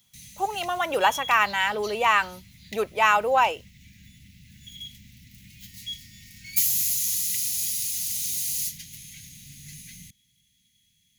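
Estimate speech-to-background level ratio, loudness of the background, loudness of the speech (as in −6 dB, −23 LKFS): 2.5 dB, −25.5 LKFS, −23.0 LKFS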